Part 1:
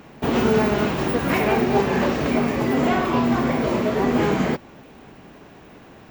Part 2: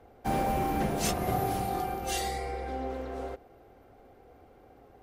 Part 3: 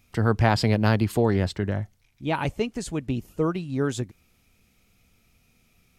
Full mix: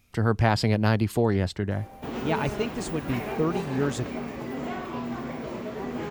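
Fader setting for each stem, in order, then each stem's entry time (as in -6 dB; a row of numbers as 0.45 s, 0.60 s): -13.0 dB, -18.0 dB, -1.5 dB; 1.80 s, 1.45 s, 0.00 s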